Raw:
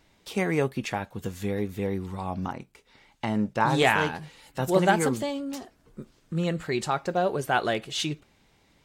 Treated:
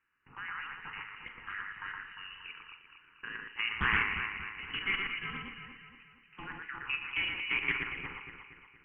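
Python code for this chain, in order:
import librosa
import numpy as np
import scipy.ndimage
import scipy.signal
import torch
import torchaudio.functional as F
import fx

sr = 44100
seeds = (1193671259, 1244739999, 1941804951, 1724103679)

y = fx.octave_divider(x, sr, octaves=1, level_db=4.0)
y = fx.env_lowpass(y, sr, base_hz=2600.0, full_db=-20.0)
y = scipy.signal.sosfilt(scipy.signal.butter(8, 510.0, 'highpass', fs=sr, output='sos'), y)
y = fx.level_steps(y, sr, step_db=13)
y = fx.dynamic_eq(y, sr, hz=2600.0, q=2.4, threshold_db=-46.0, ratio=4.0, max_db=-3)
y = fx.freq_invert(y, sr, carrier_hz=3300)
y = fx.formant_shift(y, sr, semitones=4)
y = fx.fixed_phaser(y, sr, hz=1500.0, stages=4)
y = fx.echo_alternate(y, sr, ms=117, hz=2100.0, feedback_pct=70, wet_db=-2)
y = fx.rev_schroeder(y, sr, rt60_s=0.35, comb_ms=26, drr_db=8.5)
y = fx.doppler_dist(y, sr, depth_ms=0.26)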